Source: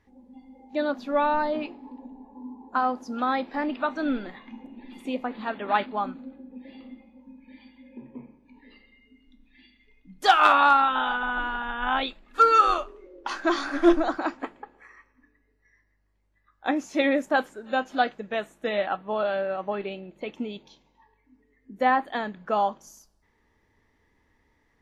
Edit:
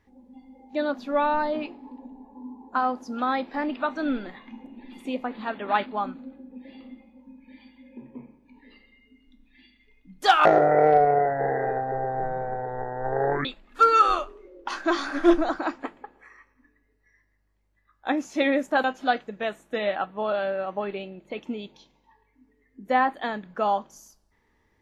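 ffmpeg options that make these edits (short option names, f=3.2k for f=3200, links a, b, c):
-filter_complex "[0:a]asplit=4[a][b][c][d];[a]atrim=end=10.454[e];[b]atrim=start=10.45:end=12.04,asetpts=PTS-STARTPTS,asetrate=23373,aresample=44100[f];[c]atrim=start=12.036:end=17.432[g];[d]atrim=start=17.748[h];[e][f]acrossfade=d=0.004:c1=hsin:c2=hsin[i];[i][g]acrossfade=d=0.004:c1=hsin:c2=hsin[j];[j][h]acrossfade=d=0.004:c1=hsin:c2=hsin"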